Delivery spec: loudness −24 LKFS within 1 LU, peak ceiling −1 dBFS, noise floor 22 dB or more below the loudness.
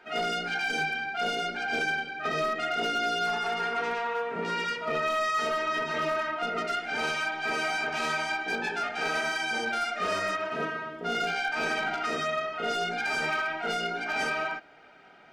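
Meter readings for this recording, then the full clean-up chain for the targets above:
share of clipped samples 1.0%; peaks flattened at −22.5 dBFS; integrated loudness −29.0 LKFS; sample peak −22.5 dBFS; target loudness −24.0 LKFS
→ clipped peaks rebuilt −22.5 dBFS
level +5 dB

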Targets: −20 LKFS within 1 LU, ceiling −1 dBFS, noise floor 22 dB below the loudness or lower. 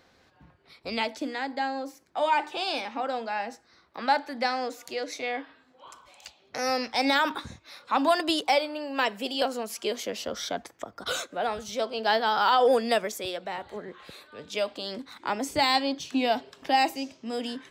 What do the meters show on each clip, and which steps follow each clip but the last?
integrated loudness −28.0 LKFS; sample peak −13.0 dBFS; target loudness −20.0 LKFS
→ level +8 dB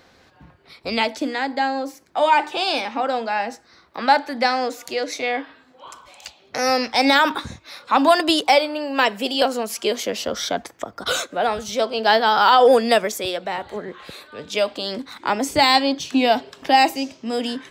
integrated loudness −20.0 LKFS; sample peak −5.0 dBFS; background noise floor −54 dBFS

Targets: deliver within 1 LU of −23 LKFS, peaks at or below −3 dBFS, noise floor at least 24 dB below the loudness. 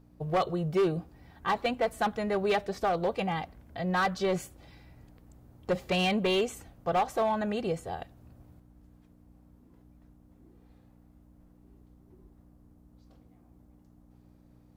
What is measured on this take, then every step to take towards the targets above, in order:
share of clipped samples 0.8%; peaks flattened at −21.0 dBFS; mains hum 60 Hz; hum harmonics up to 300 Hz; level of the hum −57 dBFS; integrated loudness −30.0 LKFS; sample peak −21.0 dBFS; target loudness −23.0 LKFS
→ clipped peaks rebuilt −21 dBFS
hum removal 60 Hz, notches 5
level +7 dB

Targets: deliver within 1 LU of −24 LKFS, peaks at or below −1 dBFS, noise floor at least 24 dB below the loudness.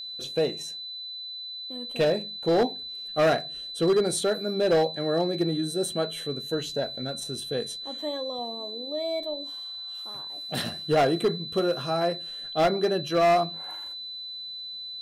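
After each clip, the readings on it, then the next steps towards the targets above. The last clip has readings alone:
share of clipped samples 1.3%; peaks flattened at −17.0 dBFS; interfering tone 4,000 Hz; level of the tone −35 dBFS; integrated loudness −27.5 LKFS; sample peak −17.0 dBFS; target loudness −24.0 LKFS
→ clipped peaks rebuilt −17 dBFS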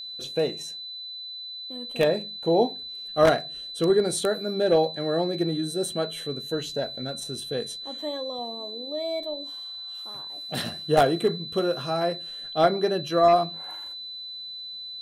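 share of clipped samples 0.0%; interfering tone 4,000 Hz; level of the tone −35 dBFS
→ notch filter 4,000 Hz, Q 30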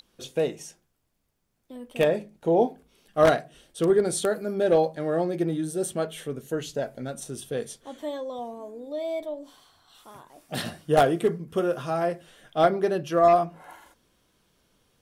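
interfering tone none found; integrated loudness −26.0 LKFS; sample peak −7.5 dBFS; target loudness −24.0 LKFS
→ level +2 dB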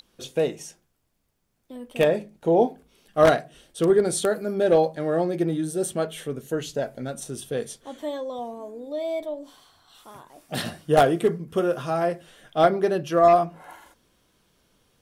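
integrated loudness −24.0 LKFS; sample peak −5.5 dBFS; background noise floor −71 dBFS

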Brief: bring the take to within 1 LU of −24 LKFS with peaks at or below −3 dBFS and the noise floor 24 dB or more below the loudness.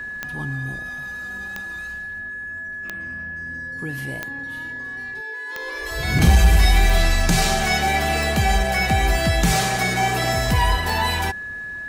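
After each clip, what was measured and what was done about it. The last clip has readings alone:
number of clicks 9; interfering tone 1,700 Hz; level of the tone −29 dBFS; integrated loudness −21.5 LKFS; sample peak −5.0 dBFS; target loudness −24.0 LKFS
→ click removal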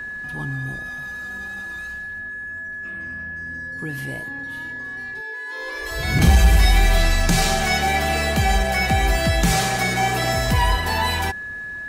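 number of clicks 0; interfering tone 1,700 Hz; level of the tone −29 dBFS
→ notch filter 1,700 Hz, Q 30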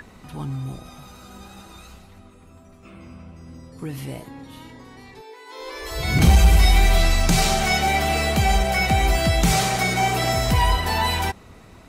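interfering tone none found; integrated loudness −19.5 LKFS; sample peak −5.5 dBFS; target loudness −24.0 LKFS
→ level −4.5 dB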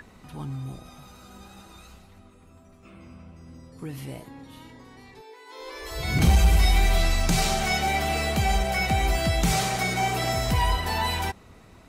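integrated loudness −24.0 LKFS; sample peak −10.0 dBFS; background noise floor −52 dBFS

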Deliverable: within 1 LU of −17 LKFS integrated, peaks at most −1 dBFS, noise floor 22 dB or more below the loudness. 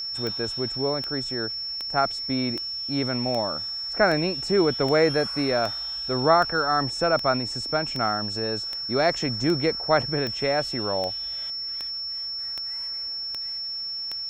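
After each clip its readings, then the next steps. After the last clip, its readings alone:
number of clicks 19; interfering tone 5,400 Hz; level of the tone −29 dBFS; integrated loudness −25.0 LKFS; sample peak −5.5 dBFS; target loudness −17.0 LKFS
→ click removal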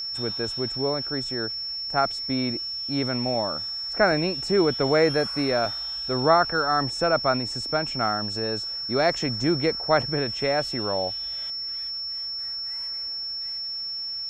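number of clicks 0; interfering tone 5,400 Hz; level of the tone −29 dBFS
→ notch filter 5,400 Hz, Q 30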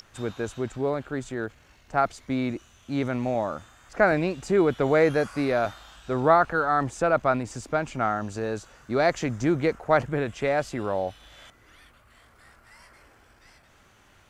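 interfering tone none found; integrated loudness −26.0 LKFS; sample peak −6.0 dBFS; target loudness −17.0 LKFS
→ level +9 dB
brickwall limiter −1 dBFS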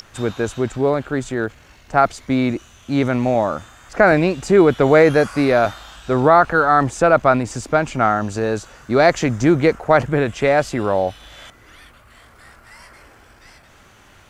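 integrated loudness −17.5 LKFS; sample peak −1.0 dBFS; background noise floor −49 dBFS

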